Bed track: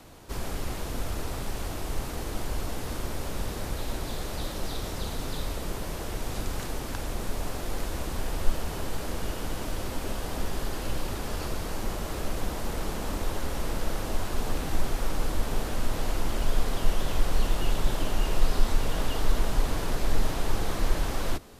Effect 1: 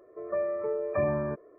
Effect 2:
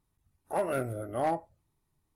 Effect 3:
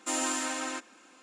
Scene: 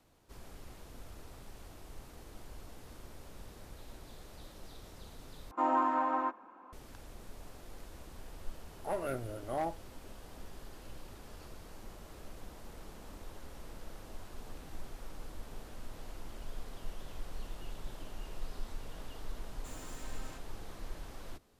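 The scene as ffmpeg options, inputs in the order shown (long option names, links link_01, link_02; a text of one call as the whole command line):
ffmpeg -i bed.wav -i cue0.wav -i cue1.wav -i cue2.wav -filter_complex "[3:a]asplit=2[link_01][link_02];[0:a]volume=-18dB[link_03];[link_01]lowpass=frequency=990:width_type=q:width=3.8[link_04];[link_02]asoftclip=type=hard:threshold=-35.5dB[link_05];[link_03]asplit=2[link_06][link_07];[link_06]atrim=end=5.514[link_08];[link_04]atrim=end=1.22,asetpts=PTS-STARTPTS,volume=-1dB[link_09];[link_07]atrim=start=6.726[link_10];[2:a]atrim=end=2.15,asetpts=PTS-STARTPTS,volume=-6dB,afade=type=in:duration=0.004:curve=hsin,afade=type=out:start_time=2.146:duration=0.004:curve=hsin,adelay=367794S[link_11];[link_05]atrim=end=1.22,asetpts=PTS-STARTPTS,volume=-15dB,afade=type=in:duration=0.004:curve=hsin,afade=type=out:start_time=1.216:duration=0.004:curve=hsin,adelay=19580[link_12];[link_08][link_09]acrossfade=duration=0.004:curve1=hsin:curve2=hsin[link_13];[link_13][link_10]acrossfade=duration=0.004:curve1=hsin:curve2=hsin[link_14];[link_14][link_11][link_12]amix=inputs=3:normalize=0" out.wav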